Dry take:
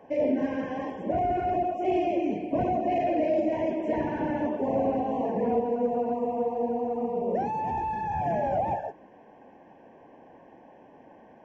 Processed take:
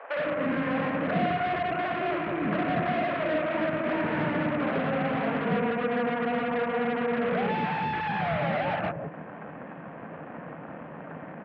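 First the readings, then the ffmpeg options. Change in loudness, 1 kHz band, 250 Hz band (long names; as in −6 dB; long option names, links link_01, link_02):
0.0 dB, −0.5 dB, 0.0 dB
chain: -filter_complex "[0:a]acompressor=threshold=-33dB:ratio=5,aresample=11025,aeval=exprs='0.0562*sin(PI/2*2*val(0)/0.0562)':channel_layout=same,aresample=44100,aeval=exprs='0.0596*(cos(1*acos(clip(val(0)/0.0596,-1,1)))-cos(1*PI/2))+0.0188*(cos(4*acos(clip(val(0)/0.0596,-1,1)))-cos(4*PI/2))':channel_layout=same,highpass=140,equalizer=frequency=160:width_type=q:width=4:gain=9,equalizer=frequency=260:width_type=q:width=4:gain=-3,equalizer=frequency=370:width_type=q:width=4:gain=-7,equalizer=frequency=840:width_type=q:width=4:gain=-7,lowpass=frequency=2500:width=0.5412,lowpass=frequency=2500:width=1.3066,acrossover=split=540[link_01][link_02];[link_01]adelay=160[link_03];[link_03][link_02]amix=inputs=2:normalize=0,volume=4.5dB"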